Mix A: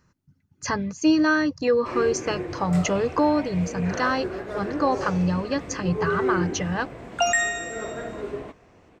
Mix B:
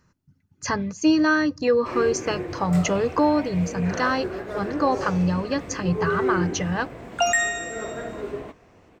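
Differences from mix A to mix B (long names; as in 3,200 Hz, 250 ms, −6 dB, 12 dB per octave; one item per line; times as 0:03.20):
background: remove low-pass filter 11,000 Hz 12 dB per octave
reverb: on, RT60 0.35 s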